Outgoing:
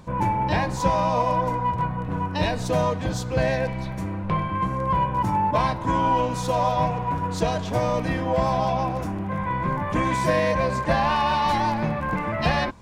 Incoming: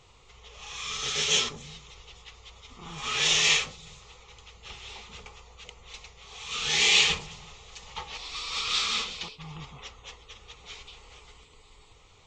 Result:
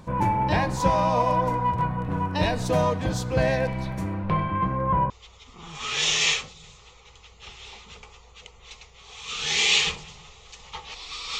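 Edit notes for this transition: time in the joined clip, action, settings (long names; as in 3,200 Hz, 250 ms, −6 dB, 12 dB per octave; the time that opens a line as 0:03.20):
outgoing
0:04.14–0:05.10: low-pass filter 7,500 Hz → 1,300 Hz
0:05.10: continue with incoming from 0:02.33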